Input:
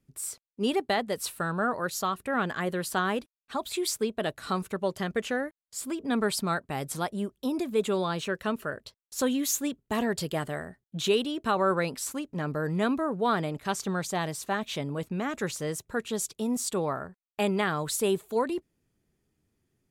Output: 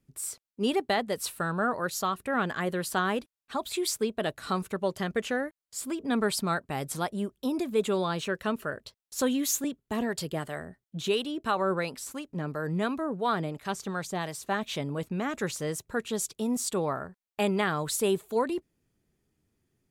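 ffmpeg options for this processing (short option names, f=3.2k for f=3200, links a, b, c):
-filter_complex "[0:a]asettb=1/sr,asplit=3[a][b][c];[a]atrim=end=9.644[d];[b]atrim=start=9.64:end=14.49,asetpts=PTS-STARTPTS,afade=t=in:d=0.004:c=qsin,afade=t=out:st=4.846:d=0.004:c=qsin,acrossover=split=550[e][f];[e]aeval=exprs='val(0)*(1-0.5/2+0.5/2*cos(2*PI*2.9*n/s))':c=same[g];[f]aeval=exprs='val(0)*(1-0.5/2-0.5/2*cos(2*PI*2.9*n/s))':c=same[h];[g][h]amix=inputs=2:normalize=0[i];[c]atrim=start=14.486[j];[d][i]acrossfade=d=0.004:c1=hsin:c2=qsin[k];[k][j]acrossfade=d=0.004:c1=qsin:c2=hsin"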